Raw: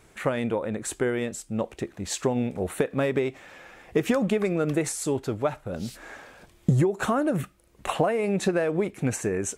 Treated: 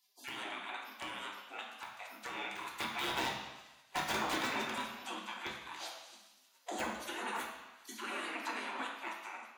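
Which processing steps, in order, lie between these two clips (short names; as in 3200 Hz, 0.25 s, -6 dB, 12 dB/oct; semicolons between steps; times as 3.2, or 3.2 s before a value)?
ending faded out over 0.68 s; notch 5300 Hz, Q 7.7; spectral gate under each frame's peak -30 dB weak; steep high-pass 200 Hz 96 dB/oct; 2.5–4.62 sample leveller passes 2; compressor 1.5:1, threshold -51 dBFS, peak gain reduction 6.5 dB; wrapped overs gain 35.5 dB; flange 0.24 Hz, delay 6.1 ms, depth 9.4 ms, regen -71%; reverb RT60 1.1 s, pre-delay 3 ms, DRR -0.5 dB; gain +5 dB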